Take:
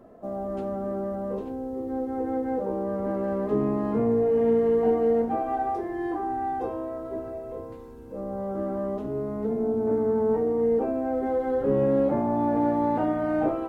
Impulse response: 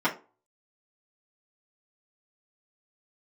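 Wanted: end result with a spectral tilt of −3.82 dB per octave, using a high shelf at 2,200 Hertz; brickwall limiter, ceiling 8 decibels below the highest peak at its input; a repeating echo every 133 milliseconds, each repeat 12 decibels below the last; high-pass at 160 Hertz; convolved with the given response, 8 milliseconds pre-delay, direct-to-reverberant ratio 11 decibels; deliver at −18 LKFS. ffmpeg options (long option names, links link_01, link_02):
-filter_complex "[0:a]highpass=160,highshelf=frequency=2200:gain=5,alimiter=limit=-20.5dB:level=0:latency=1,aecho=1:1:133|266|399:0.251|0.0628|0.0157,asplit=2[link_01][link_02];[1:a]atrim=start_sample=2205,adelay=8[link_03];[link_02][link_03]afir=irnorm=-1:irlink=0,volume=-24.5dB[link_04];[link_01][link_04]amix=inputs=2:normalize=0,volume=11dB"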